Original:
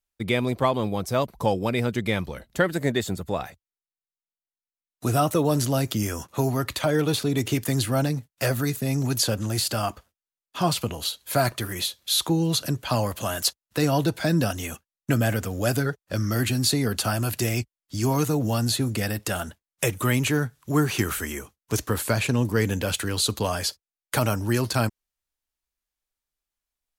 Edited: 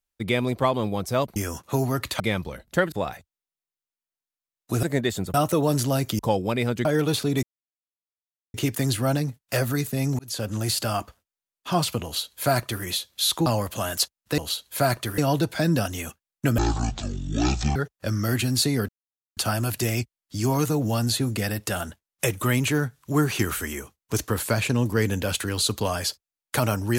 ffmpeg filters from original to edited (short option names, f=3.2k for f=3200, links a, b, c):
-filter_complex "[0:a]asplit=16[a][b][c][d][e][f][g][h][i][j][k][l][m][n][o][p];[a]atrim=end=1.362[q];[b]atrim=start=6.008:end=6.852[r];[c]atrim=start=2.018:end=2.742[s];[d]atrim=start=3.248:end=5.162[t];[e]atrim=start=2.738:end=3.252[u];[f]atrim=start=5.158:end=6.012[v];[g]atrim=start=1.358:end=2.022[w];[h]atrim=start=6.848:end=7.43,asetpts=PTS-STARTPTS,afade=t=out:st=0.578:d=0.004:c=hsin,apad=pad_dur=1.11[x];[i]atrim=start=7.43:end=9.08,asetpts=PTS-STARTPTS,afade=t=in:d=0.004:c=hsin,afade=t=out:st=1.646:d=0.004:c=hsin[y];[j]atrim=start=9.08:end=12.352,asetpts=PTS-STARTPTS,afade=t=in:d=0.37[z];[k]atrim=start=12.908:end=13.832[aa];[l]atrim=start=10.928:end=11.732[ab];[m]atrim=start=13.828:end=15.234[ac];[n]atrim=start=15.23:end=15.83,asetpts=PTS-STARTPTS,asetrate=22491,aresample=44100,atrim=end_sample=51882,asetpts=PTS-STARTPTS[ad];[o]atrim=start=15.826:end=16.96,asetpts=PTS-STARTPTS,afade=t=out:st=1.13:d=0.004:c=hsin,apad=pad_dur=0.48[ae];[p]atrim=start=16.96,asetpts=PTS-STARTPTS,afade=t=in:d=0.004:c=hsin[af];[q][r]acrossfade=d=0.004:c1=hsin:c2=hsin[ag];[ag][s]acrossfade=d=0.004:c1=hsin:c2=hsin[ah];[ah][t]acrossfade=d=0.004:c1=hsin:c2=hsin[ai];[ai][u]acrossfade=d=0.004:c1=hsin:c2=hsin[aj];[aj][v]acrossfade=d=0.004:c1=hsin:c2=hsin[ak];[ak][w]acrossfade=d=0.004:c1=hsin:c2=hsin[al];[x][y][z]concat=n=3:v=0:a=1[am];[al][am]acrossfade=d=0.004:c1=hsin:c2=hsin[an];[an][aa]acrossfade=d=0.004:c1=hsin:c2=hsin[ao];[ao][ab]acrossfade=d=0.004:c1=hsin:c2=hsin[ap];[ap][ac]acrossfade=d=0.004:c1=hsin:c2=hsin[aq];[aq][ad]acrossfade=d=0.004:c1=hsin:c2=hsin[ar];[ae][af]concat=n=2:v=0:a=1[as];[ar][as]acrossfade=d=0.004:c1=hsin:c2=hsin"